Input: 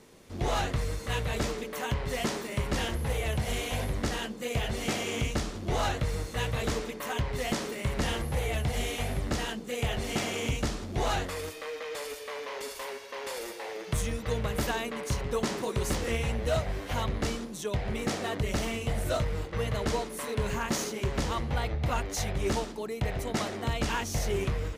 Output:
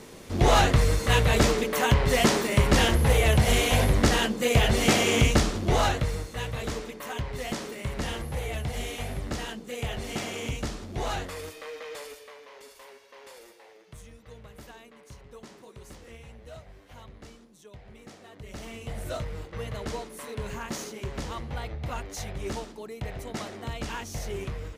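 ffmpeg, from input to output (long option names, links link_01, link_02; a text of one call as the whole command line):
ffmpeg -i in.wav -af "volume=22dB,afade=type=out:start_time=5.31:duration=0.98:silence=0.266073,afade=type=out:start_time=11.92:duration=0.46:silence=0.354813,afade=type=out:start_time=13.28:duration=0.57:silence=0.501187,afade=type=in:start_time=18.33:duration=0.71:silence=0.237137" out.wav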